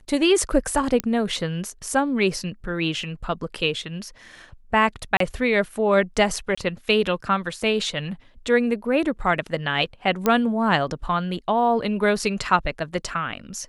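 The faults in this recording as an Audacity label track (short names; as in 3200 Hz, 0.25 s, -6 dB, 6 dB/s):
1.000000	1.000000	pop -7 dBFS
5.170000	5.200000	gap 33 ms
6.550000	6.580000	gap 25 ms
10.260000	10.260000	pop -7 dBFS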